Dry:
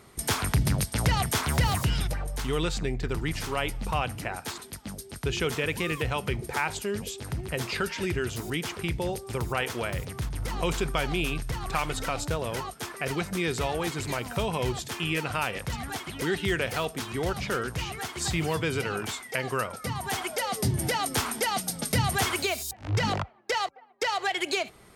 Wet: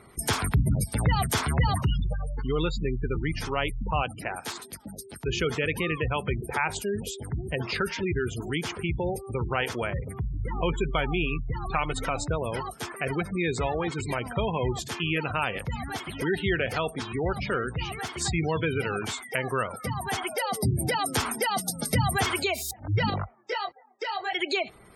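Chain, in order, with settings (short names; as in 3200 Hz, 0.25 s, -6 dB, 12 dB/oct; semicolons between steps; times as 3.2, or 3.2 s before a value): spectral gate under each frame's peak -20 dB strong; 4.03–5.28 low shelf 140 Hz -10 dB; 23.1–24.33 detuned doubles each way 17 cents; gain +1.5 dB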